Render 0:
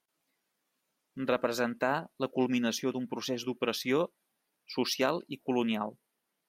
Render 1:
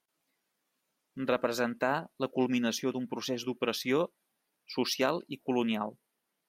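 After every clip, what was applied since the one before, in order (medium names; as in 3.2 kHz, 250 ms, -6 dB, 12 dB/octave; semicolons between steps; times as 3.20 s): no audible change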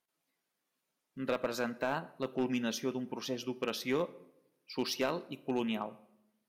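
on a send at -13.5 dB: reverberation RT60 0.80 s, pre-delay 4 ms; on the sum: overload inside the chain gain 19.5 dB; trim -4 dB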